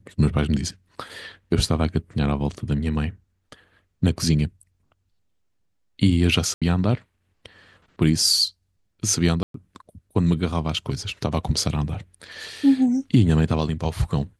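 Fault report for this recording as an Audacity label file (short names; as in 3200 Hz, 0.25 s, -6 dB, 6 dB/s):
6.540000	6.620000	gap 76 ms
9.430000	9.540000	gap 0.113 s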